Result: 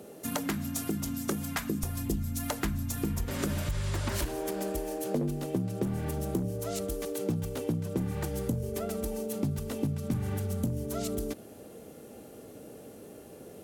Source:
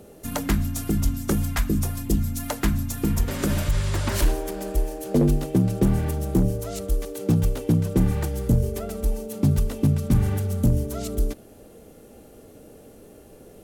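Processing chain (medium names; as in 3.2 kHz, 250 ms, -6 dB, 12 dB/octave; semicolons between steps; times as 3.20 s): high-pass 160 Hz 12 dB/octave, from 1.83 s 43 Hz, from 4.25 s 100 Hz; compression 4:1, threshold -29 dBFS, peak gain reduction 11.5 dB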